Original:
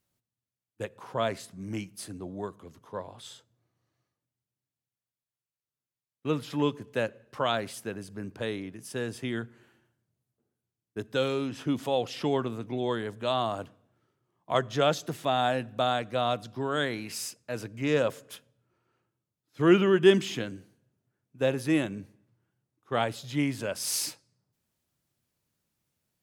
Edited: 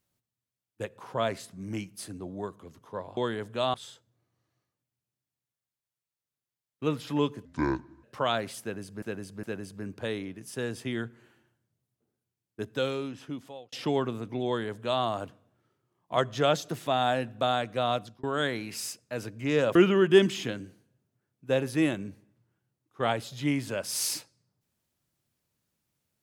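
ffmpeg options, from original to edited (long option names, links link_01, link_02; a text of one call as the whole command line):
ffmpeg -i in.wav -filter_complex "[0:a]asplit=10[link_01][link_02][link_03][link_04][link_05][link_06][link_07][link_08][link_09][link_10];[link_01]atrim=end=3.172[link_11];[link_02]atrim=start=12.838:end=13.412[link_12];[link_03]atrim=start=3.168:end=6.884[link_13];[link_04]atrim=start=6.88:end=7.23,asetpts=PTS-STARTPTS,asetrate=26460,aresample=44100[link_14];[link_05]atrim=start=7.226:end=8.222[link_15];[link_06]atrim=start=7.808:end=8.222[link_16];[link_07]atrim=start=7.808:end=12.1,asetpts=PTS-STARTPTS,afade=type=out:start_time=3.202:duration=1.09[link_17];[link_08]atrim=start=12.1:end=16.61,asetpts=PTS-STARTPTS,afade=type=in:duration=0.004:curve=hsin,afade=type=out:start_time=4.18:duration=0.33:curve=qsin[link_18];[link_09]atrim=start=16.61:end=18.132,asetpts=PTS-STARTPTS,afade=type=in:duration=0.004:curve=hsin[link_19];[link_10]atrim=start=19.668[link_20];[link_11][link_12]acrossfade=duration=0.004:curve1=hsin:curve2=hsin[link_21];[link_21][link_13]acrossfade=duration=0.004:curve1=hsin:curve2=hsin[link_22];[link_22][link_14]acrossfade=duration=0.004:curve1=hsin:curve2=hsin[link_23];[link_23][link_15]acrossfade=duration=0.004:curve1=hsin:curve2=hsin[link_24];[link_24][link_16]acrossfade=duration=0.004:curve1=hsin:curve2=hsin[link_25];[link_17][link_18][link_19]concat=n=3:v=0:a=1[link_26];[link_25][link_26]acrossfade=duration=0.004:curve1=hsin:curve2=hsin[link_27];[link_27][link_20]acrossfade=duration=0.004:curve1=hsin:curve2=hsin" out.wav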